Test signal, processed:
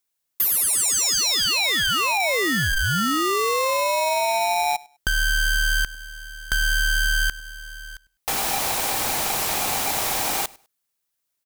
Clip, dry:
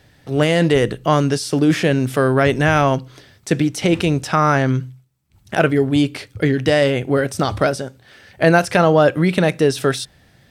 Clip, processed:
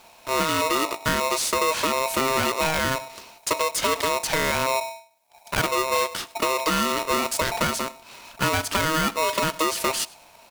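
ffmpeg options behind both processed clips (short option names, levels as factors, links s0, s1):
-filter_complex "[0:a]highshelf=f=5700:g=9,acompressor=threshold=0.112:ratio=6,asoftclip=type=tanh:threshold=0.224,acrusher=bits=5:mode=log:mix=0:aa=0.000001,asplit=2[s0][s1];[s1]aecho=0:1:101|202:0.0708|0.0149[s2];[s0][s2]amix=inputs=2:normalize=0,aeval=exprs='val(0)*sgn(sin(2*PI*790*n/s))':c=same"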